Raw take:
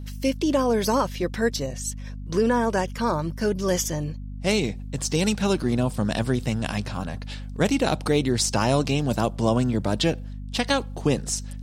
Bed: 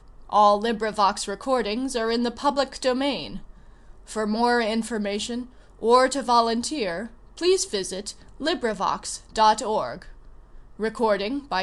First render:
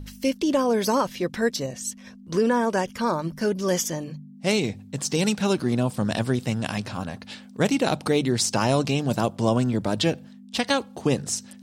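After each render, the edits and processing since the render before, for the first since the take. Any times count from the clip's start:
hum removal 50 Hz, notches 3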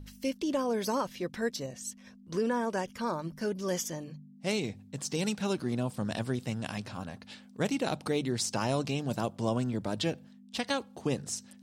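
level −8.5 dB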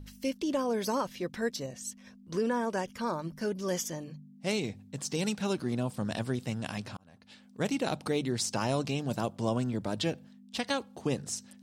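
0:06.97–0:07.71: fade in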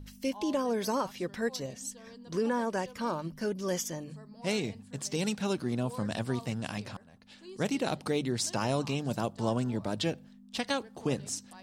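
mix in bed −28 dB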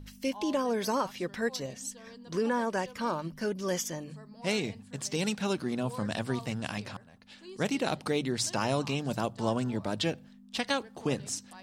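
parametric band 2,000 Hz +3 dB 2.5 octaves
mains-hum notches 60/120 Hz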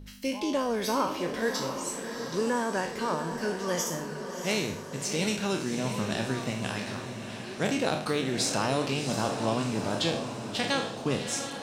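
peak hold with a decay on every bin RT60 0.52 s
feedback delay with all-pass diffusion 694 ms, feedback 55%, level −7.5 dB

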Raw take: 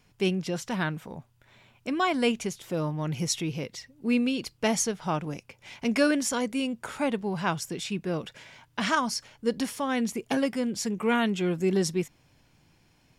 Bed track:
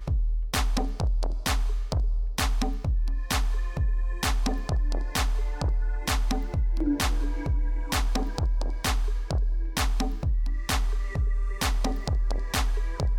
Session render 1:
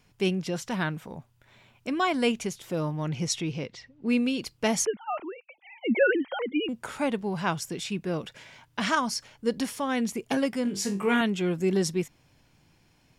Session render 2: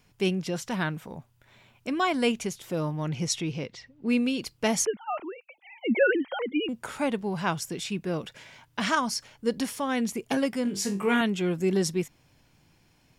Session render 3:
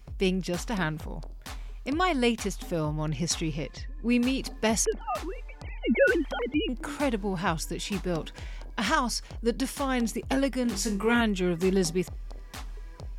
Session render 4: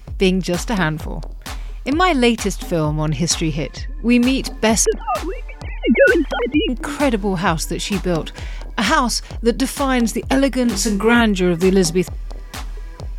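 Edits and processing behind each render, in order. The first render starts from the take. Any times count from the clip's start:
0:03.09–0:04.25: low-pass that shuts in the quiet parts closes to 2,900 Hz, open at −21 dBFS; 0:04.85–0:06.69: three sine waves on the formant tracks; 0:10.63–0:11.21: flutter between parallel walls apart 3.5 metres, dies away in 0.26 s
high-shelf EQ 12,000 Hz +4 dB
mix in bed track −14 dB
level +10.5 dB; brickwall limiter −3 dBFS, peak gain reduction 2.5 dB

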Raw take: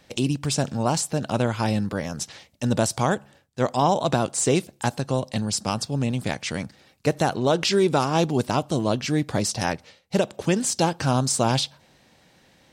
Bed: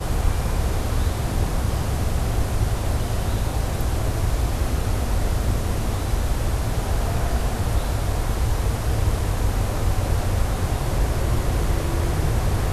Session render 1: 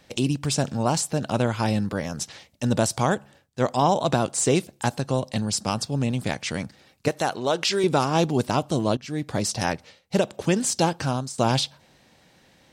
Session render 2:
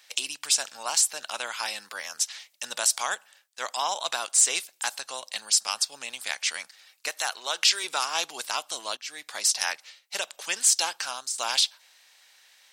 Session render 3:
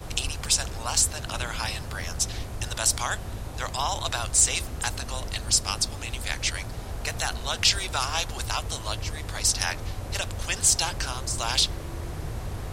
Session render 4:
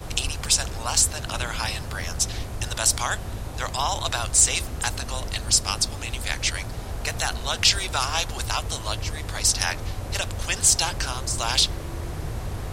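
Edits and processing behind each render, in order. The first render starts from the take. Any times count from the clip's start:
0:07.08–0:07.84: low-shelf EQ 280 Hz −12 dB; 0:08.97–0:09.67: fade in equal-power, from −17 dB; 0:10.93–0:11.38: fade out, to −18.5 dB
high-pass filter 1,200 Hz 12 dB per octave; spectral tilt +2 dB per octave
mix in bed −12 dB
level +2.5 dB

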